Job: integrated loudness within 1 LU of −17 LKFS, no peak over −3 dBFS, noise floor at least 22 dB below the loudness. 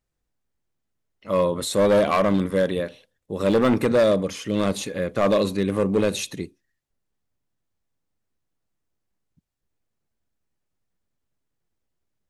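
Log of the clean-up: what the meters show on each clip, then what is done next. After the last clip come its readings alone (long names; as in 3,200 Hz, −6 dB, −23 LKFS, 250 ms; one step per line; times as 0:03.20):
share of clipped samples 1.1%; peaks flattened at −13.5 dBFS; integrated loudness −22.0 LKFS; sample peak −13.5 dBFS; target loudness −17.0 LKFS
→ clipped peaks rebuilt −13.5 dBFS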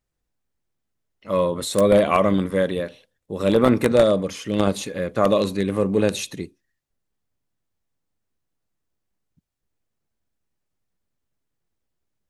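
share of clipped samples 0.0%; integrated loudness −20.5 LKFS; sample peak −4.5 dBFS; target loudness −17.0 LKFS
→ level +3.5 dB
brickwall limiter −3 dBFS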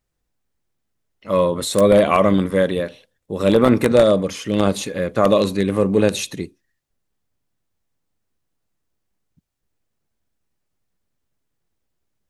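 integrated loudness −17.5 LKFS; sample peak −3.0 dBFS; background noise floor −75 dBFS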